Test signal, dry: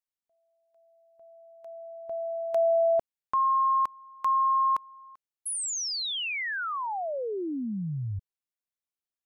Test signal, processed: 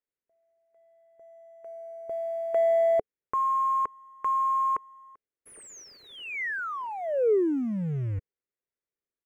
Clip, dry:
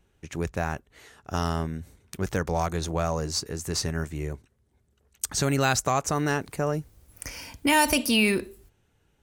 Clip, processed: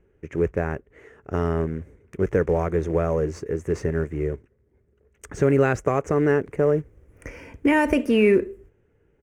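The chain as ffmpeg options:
-af "acrusher=bits=4:mode=log:mix=0:aa=0.000001,firequalizer=gain_entry='entry(230,0);entry(430,9);entry(750,-6);entry(2000,-1);entry(4100,-27);entry(6200,-17);entry(13000,-26)':delay=0.05:min_phase=1,volume=1.41"

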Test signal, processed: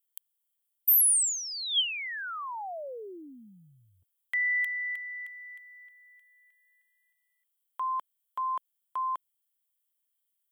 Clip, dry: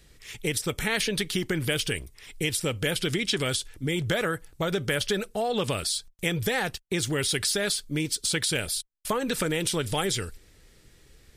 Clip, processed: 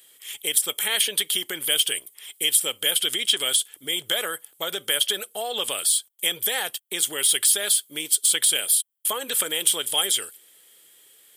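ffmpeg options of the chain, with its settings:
-af "highpass=500,equalizer=f=3200:w=6.8:g=14.5,aexciter=amount=3.6:drive=8.7:freq=7800,volume=0.891"

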